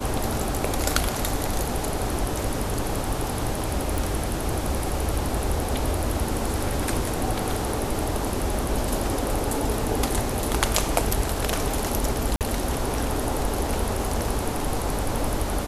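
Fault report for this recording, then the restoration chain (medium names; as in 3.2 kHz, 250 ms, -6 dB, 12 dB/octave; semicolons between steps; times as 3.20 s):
3.98 s: pop
12.36–12.41 s: dropout 48 ms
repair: de-click; interpolate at 12.36 s, 48 ms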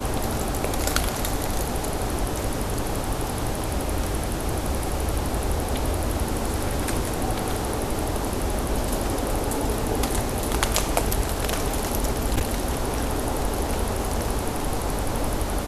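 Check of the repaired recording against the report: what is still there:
nothing left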